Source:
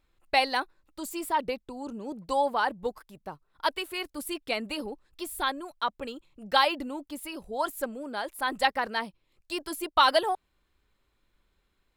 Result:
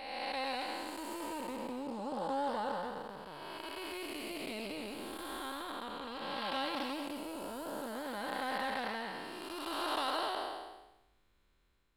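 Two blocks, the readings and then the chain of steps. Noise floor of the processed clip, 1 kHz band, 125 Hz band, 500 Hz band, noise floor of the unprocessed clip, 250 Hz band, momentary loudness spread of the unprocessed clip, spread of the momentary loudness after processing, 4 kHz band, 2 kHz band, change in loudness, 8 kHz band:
-72 dBFS, -9.5 dB, no reading, -8.5 dB, -74 dBFS, -4.5 dB, 16 LU, 8 LU, -9.0 dB, -10.0 dB, -9.5 dB, -8.5 dB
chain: spectral blur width 637 ms; loudspeaker Doppler distortion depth 0.11 ms; trim +1 dB

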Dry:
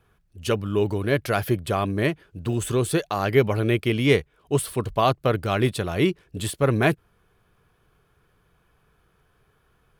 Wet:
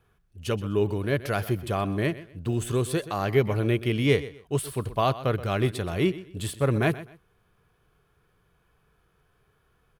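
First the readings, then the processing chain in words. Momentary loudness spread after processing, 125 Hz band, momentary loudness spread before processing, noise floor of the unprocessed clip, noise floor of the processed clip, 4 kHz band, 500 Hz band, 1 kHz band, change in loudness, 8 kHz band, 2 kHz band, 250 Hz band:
7 LU, -2.0 dB, 7 LU, -65 dBFS, -68 dBFS, -4.0 dB, -3.5 dB, -4.0 dB, -3.0 dB, -4.5 dB, -4.5 dB, -3.0 dB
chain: feedback delay 126 ms, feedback 26%, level -17 dB; harmonic-percussive split harmonic +4 dB; trim -5.5 dB

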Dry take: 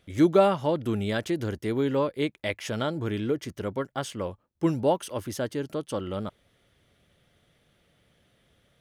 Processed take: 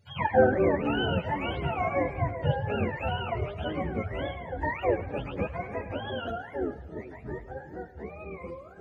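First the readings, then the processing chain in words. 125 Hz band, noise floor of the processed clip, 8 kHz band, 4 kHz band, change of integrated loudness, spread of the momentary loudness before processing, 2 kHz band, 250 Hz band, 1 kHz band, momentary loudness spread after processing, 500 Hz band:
+1.0 dB, -47 dBFS, under -25 dB, -0.5 dB, -1.5 dB, 12 LU, +4.5 dB, -4.5 dB, +2.0 dB, 15 LU, -1.5 dB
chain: spectrum inverted on a logarithmic axis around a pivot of 550 Hz; ever faster or slower copies 92 ms, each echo -5 st, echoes 2, each echo -6 dB; peaking EQ 1.1 kHz -7 dB 0.43 oct; on a send: two-band feedback delay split 510 Hz, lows 445 ms, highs 107 ms, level -15 dB

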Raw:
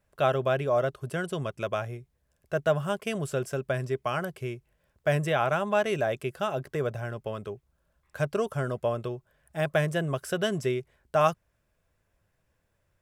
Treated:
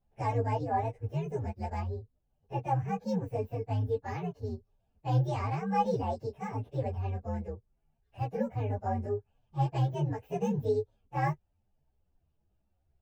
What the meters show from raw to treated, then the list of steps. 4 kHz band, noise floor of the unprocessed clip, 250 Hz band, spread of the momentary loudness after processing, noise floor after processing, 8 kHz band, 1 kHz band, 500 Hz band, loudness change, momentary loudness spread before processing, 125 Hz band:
-14.0 dB, -75 dBFS, -2.0 dB, 9 LU, -76 dBFS, under -10 dB, -1.5 dB, -7.5 dB, -4.0 dB, 12 LU, +1.0 dB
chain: frequency axis rescaled in octaves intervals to 130%; tilt shelf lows +9 dB; three-phase chorus; trim -2.5 dB

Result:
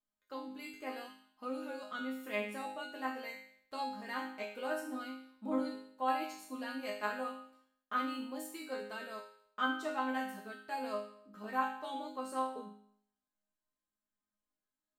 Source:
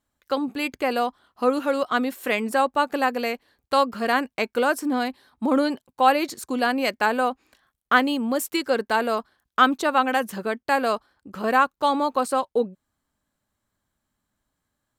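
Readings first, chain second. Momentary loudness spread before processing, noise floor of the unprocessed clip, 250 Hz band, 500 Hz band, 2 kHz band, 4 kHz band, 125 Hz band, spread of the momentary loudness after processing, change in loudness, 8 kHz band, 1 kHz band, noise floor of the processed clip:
9 LU, -82 dBFS, -15.5 dB, -17.5 dB, -16.0 dB, -16.5 dB, no reading, 11 LU, -16.0 dB, -16.5 dB, -16.0 dB, under -85 dBFS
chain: chord resonator G#3 major, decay 0.63 s; trim +4 dB

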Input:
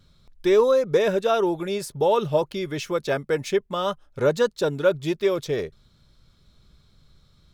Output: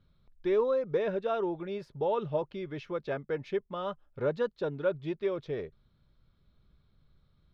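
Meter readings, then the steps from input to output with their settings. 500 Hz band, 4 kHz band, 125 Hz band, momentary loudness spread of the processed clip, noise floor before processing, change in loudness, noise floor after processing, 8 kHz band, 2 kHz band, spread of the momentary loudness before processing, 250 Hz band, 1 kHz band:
-9.5 dB, -16.0 dB, -8.5 dB, 9 LU, -60 dBFS, -9.5 dB, -69 dBFS, under -25 dB, -11.0 dB, 9 LU, -9.0 dB, -10.0 dB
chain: distance through air 300 m; trim -8.5 dB

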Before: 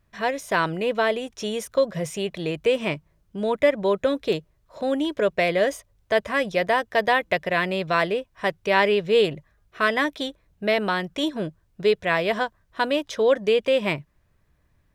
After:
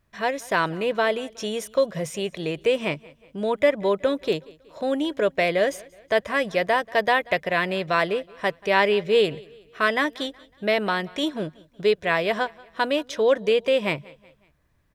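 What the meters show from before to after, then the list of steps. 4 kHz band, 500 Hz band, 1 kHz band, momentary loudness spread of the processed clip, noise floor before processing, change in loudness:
0.0 dB, -0.5 dB, 0.0 dB, 9 LU, -66 dBFS, 0.0 dB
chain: bass shelf 140 Hz -4 dB; on a send: feedback delay 185 ms, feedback 45%, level -23.5 dB

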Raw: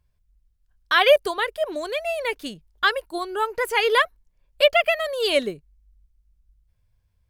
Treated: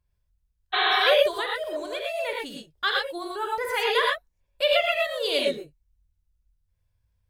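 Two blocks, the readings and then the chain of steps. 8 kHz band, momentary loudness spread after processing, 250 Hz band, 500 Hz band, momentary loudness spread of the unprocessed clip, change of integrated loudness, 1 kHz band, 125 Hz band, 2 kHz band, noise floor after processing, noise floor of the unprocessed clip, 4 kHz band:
-3.5 dB, 12 LU, -4.0 dB, -3.5 dB, 11 LU, -3.0 dB, -2.5 dB, no reading, -3.0 dB, -74 dBFS, -69 dBFS, 0.0 dB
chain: gated-style reverb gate 140 ms rising, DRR -1.5 dB; dynamic bell 3.7 kHz, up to +6 dB, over -39 dBFS, Q 4; spectral replace 0.76–0.97 s, 340–4400 Hz after; trim -7.5 dB

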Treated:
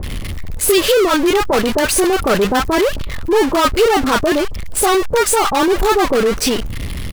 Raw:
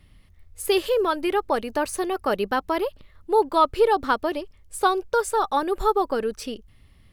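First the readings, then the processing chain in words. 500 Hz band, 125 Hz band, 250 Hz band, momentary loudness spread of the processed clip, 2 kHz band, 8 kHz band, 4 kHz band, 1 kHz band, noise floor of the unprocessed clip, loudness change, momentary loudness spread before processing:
+8.5 dB, no reading, +12.5 dB, 8 LU, +11.0 dB, +17.5 dB, +13.5 dB, +5.5 dB, -55 dBFS, +9.0 dB, 11 LU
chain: power-law waveshaper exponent 0.35; bands offset in time lows, highs 30 ms, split 960 Hz; trim +1 dB

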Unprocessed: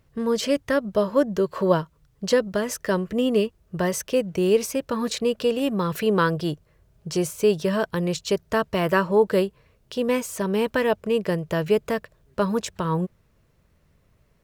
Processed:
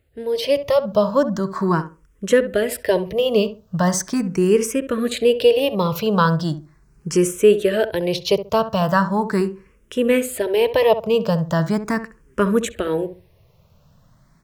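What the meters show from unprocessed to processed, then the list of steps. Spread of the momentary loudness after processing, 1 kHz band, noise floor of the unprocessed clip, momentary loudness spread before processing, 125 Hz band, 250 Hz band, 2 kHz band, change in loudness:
9 LU, +5.0 dB, -63 dBFS, 7 LU, +5.0 dB, +3.5 dB, +2.5 dB, +4.5 dB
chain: on a send: filtered feedback delay 67 ms, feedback 23%, low-pass 1.4 kHz, level -11 dB; on the sum: level rider gain up to 10.5 dB; barber-pole phaser +0.39 Hz

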